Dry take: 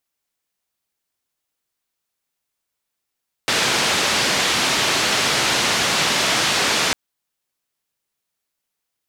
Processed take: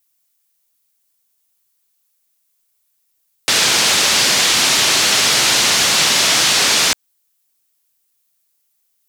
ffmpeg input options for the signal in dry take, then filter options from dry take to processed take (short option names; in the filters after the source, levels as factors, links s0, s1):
-f lavfi -i "anoisesrc=c=white:d=3.45:r=44100:seed=1,highpass=f=110,lowpass=f=4800,volume=-7.8dB"
-filter_complex "[0:a]acrossover=split=7100[s0][s1];[s1]alimiter=level_in=1.88:limit=0.0631:level=0:latency=1:release=150,volume=0.531[s2];[s0][s2]amix=inputs=2:normalize=0,crystalizer=i=3:c=0"